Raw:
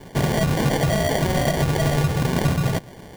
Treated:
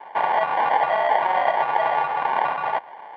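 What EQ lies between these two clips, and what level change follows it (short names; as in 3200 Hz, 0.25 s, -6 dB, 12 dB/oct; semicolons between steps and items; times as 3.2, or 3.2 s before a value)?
resonant high-pass 870 Hz, resonance Q 5.3; inverse Chebyshev low-pass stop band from 10000 Hz, stop band 70 dB; 0.0 dB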